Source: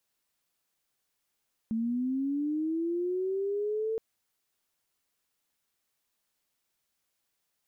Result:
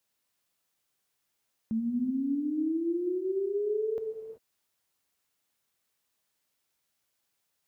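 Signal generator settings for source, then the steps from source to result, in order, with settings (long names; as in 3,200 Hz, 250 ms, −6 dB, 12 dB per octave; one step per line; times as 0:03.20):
glide linear 220 Hz → 450 Hz −27 dBFS → −28 dBFS 2.27 s
high-pass filter 42 Hz
reverb whose tail is shaped and stops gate 410 ms flat, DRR 5.5 dB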